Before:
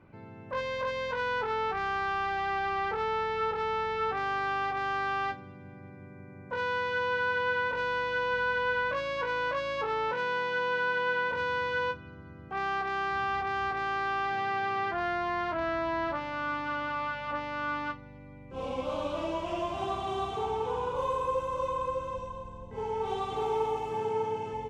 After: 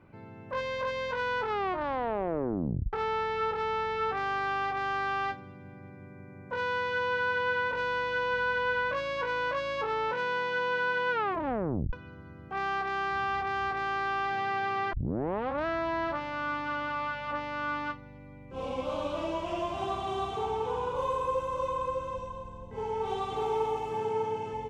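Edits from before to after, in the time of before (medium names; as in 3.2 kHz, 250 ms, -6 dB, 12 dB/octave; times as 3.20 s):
1.47 s: tape stop 1.46 s
11.11 s: tape stop 0.82 s
14.93 s: tape start 0.73 s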